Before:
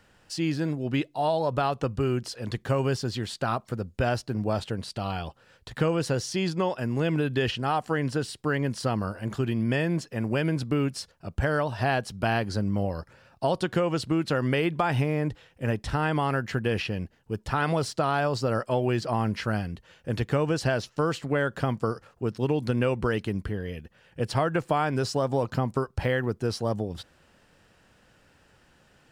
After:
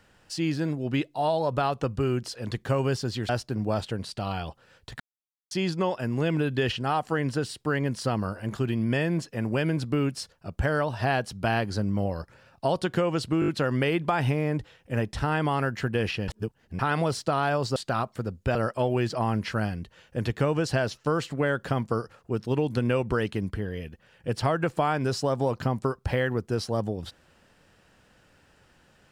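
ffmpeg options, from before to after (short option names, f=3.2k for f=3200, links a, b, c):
-filter_complex "[0:a]asplit=12[a][b][c][d][e][f][g][h][i][j][k][l];[a]atrim=end=3.292[m];[b]atrim=start=4.078:end=5.79,asetpts=PTS-STARTPTS,afade=t=out:st=1.708:d=0.004:c=hsin[n];[c]atrim=start=5.79:end=6.3,asetpts=PTS-STARTPTS,volume=0[o];[d]atrim=start=6.3:end=14.212,asetpts=PTS-STARTPTS,afade=t=in:d=0.004:c=hsin[p];[e]atrim=start=14.188:end=14.212[q];[f]atrim=start=14.188:end=14.212[r];[g]atrim=start=14.188:end=14.212[s];[h]atrim=start=14.188:end=16.992[t];[i]atrim=start=16.988:end=17.502,asetpts=PTS-STARTPTS,areverse[u];[j]atrim=start=17.498:end=18.472[v];[k]atrim=start=3.288:end=4.082[w];[l]atrim=start=18.468[x];[n][o][p]concat=n=3:v=0:a=1[y];[m][y]acrossfade=d=0.004:c1=hsin:c2=hsin[z];[z][q]acrossfade=d=0.004:c1=hsin:c2=hsin[aa];[aa][r]acrossfade=d=0.004:c1=hsin:c2=hsin[ab];[ab][s]acrossfade=d=0.004:c1=hsin:c2=hsin[ac];[ac][t]acrossfade=d=0.004:c1=hsin:c2=hsin[ad];[ad][u]acrossfade=d=0.004:c1=hsin:c2=hsin[ae];[ae][v]acrossfade=d=0.004:c1=hsin:c2=hsin[af];[af][w]acrossfade=d=0.004:c1=hsin:c2=hsin[ag];[ag][x]acrossfade=d=0.004:c1=hsin:c2=hsin"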